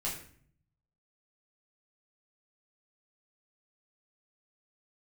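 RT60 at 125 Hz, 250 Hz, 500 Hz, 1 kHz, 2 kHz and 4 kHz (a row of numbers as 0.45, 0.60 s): 1.2, 0.85, 0.55, 0.50, 0.55, 0.40 s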